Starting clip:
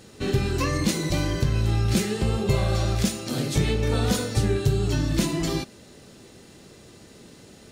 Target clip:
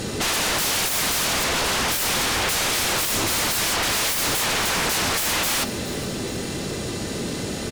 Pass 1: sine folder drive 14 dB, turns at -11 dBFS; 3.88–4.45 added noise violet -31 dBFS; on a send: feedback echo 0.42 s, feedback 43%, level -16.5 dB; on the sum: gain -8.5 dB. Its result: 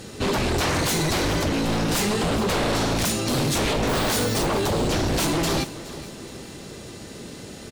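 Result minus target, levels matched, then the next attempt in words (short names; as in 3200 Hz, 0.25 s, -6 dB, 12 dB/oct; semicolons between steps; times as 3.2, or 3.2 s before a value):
sine folder: distortion -27 dB
sine folder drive 25 dB, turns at -11 dBFS; 3.88–4.45 added noise violet -31 dBFS; on a send: feedback echo 0.42 s, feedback 43%, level -16.5 dB; on the sum: gain -8.5 dB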